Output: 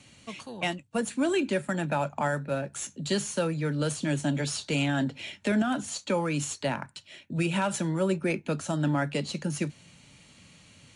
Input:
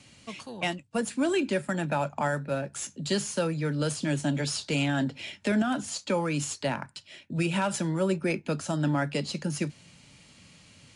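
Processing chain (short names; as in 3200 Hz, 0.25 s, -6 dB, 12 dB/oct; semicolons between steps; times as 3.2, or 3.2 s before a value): notch 5000 Hz, Q 8.7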